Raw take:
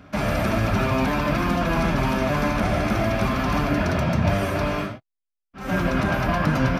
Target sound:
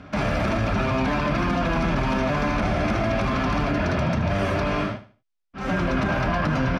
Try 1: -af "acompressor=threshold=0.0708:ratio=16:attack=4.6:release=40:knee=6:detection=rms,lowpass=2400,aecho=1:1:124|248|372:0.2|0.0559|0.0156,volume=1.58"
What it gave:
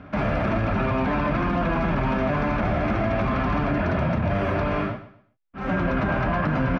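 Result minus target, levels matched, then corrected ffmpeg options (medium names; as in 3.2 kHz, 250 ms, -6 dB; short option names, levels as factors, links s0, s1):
8 kHz band -13.5 dB; echo 47 ms late
-af "acompressor=threshold=0.0708:ratio=16:attack=4.6:release=40:knee=6:detection=rms,lowpass=6000,aecho=1:1:77|154|231:0.2|0.0559|0.0156,volume=1.58"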